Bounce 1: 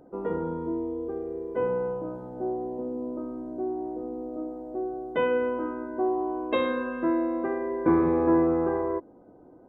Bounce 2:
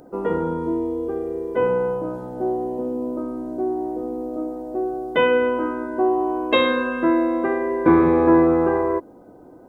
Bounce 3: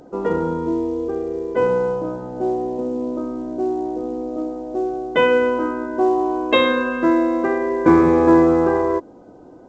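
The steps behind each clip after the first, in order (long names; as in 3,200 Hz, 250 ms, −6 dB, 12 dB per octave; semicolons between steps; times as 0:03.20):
high-shelf EQ 2,500 Hz +12 dB; level +6.5 dB
level +2 dB; A-law companding 128 kbit/s 16,000 Hz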